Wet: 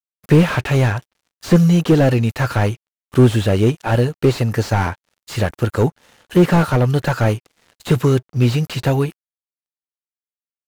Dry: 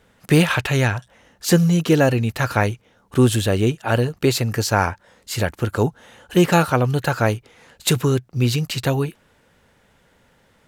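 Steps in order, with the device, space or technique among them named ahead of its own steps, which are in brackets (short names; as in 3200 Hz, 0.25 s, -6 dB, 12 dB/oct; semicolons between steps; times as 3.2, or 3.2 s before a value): early transistor amplifier (crossover distortion -46 dBFS; slew limiter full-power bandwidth 96 Hz); gain +4 dB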